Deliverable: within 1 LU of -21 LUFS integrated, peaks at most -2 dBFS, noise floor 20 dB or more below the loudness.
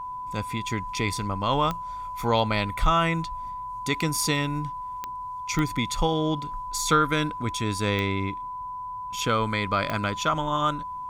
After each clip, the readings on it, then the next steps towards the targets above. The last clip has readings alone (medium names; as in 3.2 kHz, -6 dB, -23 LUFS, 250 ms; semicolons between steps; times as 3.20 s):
clicks found 5; steady tone 1 kHz; tone level -32 dBFS; loudness -26.5 LUFS; peak level -8.0 dBFS; loudness target -21.0 LUFS
-> de-click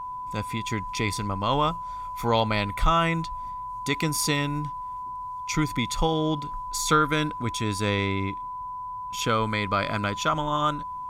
clicks found 0; steady tone 1 kHz; tone level -32 dBFS
-> band-stop 1 kHz, Q 30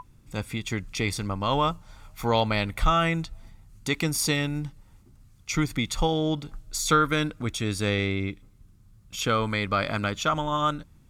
steady tone not found; loudness -26.5 LUFS; peak level -8.5 dBFS; loudness target -21.0 LUFS
-> trim +5.5 dB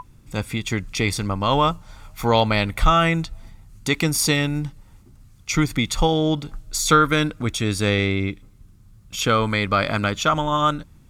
loudness -21.0 LUFS; peak level -3.0 dBFS; noise floor -50 dBFS